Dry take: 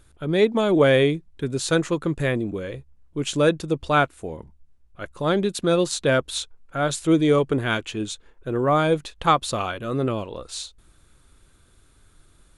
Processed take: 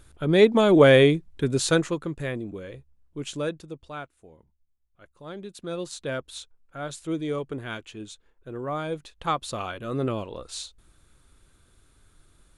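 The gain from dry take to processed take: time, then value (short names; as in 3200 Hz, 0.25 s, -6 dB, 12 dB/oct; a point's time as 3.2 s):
1.61 s +2 dB
2.11 s -7.5 dB
3.26 s -7.5 dB
3.98 s -18.5 dB
5.24 s -18.5 dB
5.89 s -11 dB
8.86 s -11 dB
10.04 s -3 dB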